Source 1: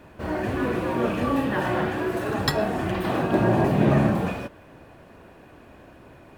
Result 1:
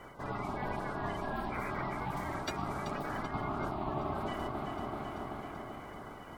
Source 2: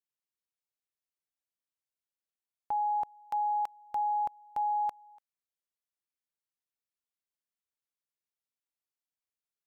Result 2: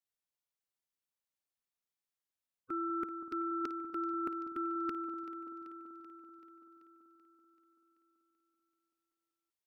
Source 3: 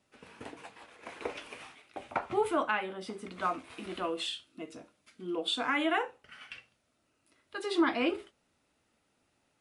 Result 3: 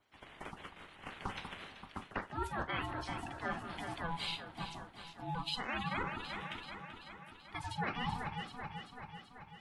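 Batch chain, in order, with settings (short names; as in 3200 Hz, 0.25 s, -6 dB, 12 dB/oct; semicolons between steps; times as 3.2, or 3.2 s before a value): bin magnitudes rounded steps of 30 dB; echo with dull and thin repeats by turns 0.192 s, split 840 Hz, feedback 78%, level -10 dB; reverse; compressor 5:1, threshold -34 dBFS; reverse; ring modulator 500 Hz; gain +2 dB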